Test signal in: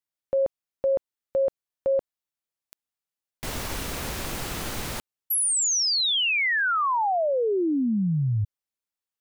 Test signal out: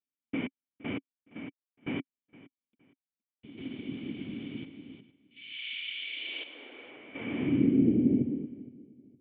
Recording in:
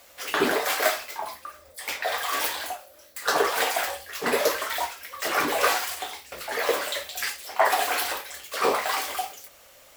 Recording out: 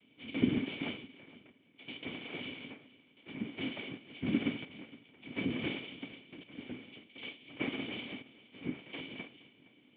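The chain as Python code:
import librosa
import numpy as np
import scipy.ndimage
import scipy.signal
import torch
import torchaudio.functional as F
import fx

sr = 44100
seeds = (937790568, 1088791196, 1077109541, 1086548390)

p1 = fx.dynamic_eq(x, sr, hz=790.0, q=2.4, threshold_db=-36.0, ratio=4.0, max_db=-3)
p2 = 10.0 ** (-23.5 / 20.0) * (np.abs((p1 / 10.0 ** (-23.5 / 20.0) + 3.0) % 4.0 - 2.0) - 1.0)
p3 = p1 + (p2 * librosa.db_to_amplitude(-9.5))
p4 = fx.chopper(p3, sr, hz=0.56, depth_pct=65, duty_pct=60)
p5 = fx.noise_vocoder(p4, sr, seeds[0], bands=3)
p6 = fx.formant_cascade(p5, sr, vowel='i')
p7 = p6 + fx.echo_feedback(p6, sr, ms=465, feedback_pct=28, wet_db=-20, dry=0)
y = p7 * librosa.db_to_amplitude(4.0)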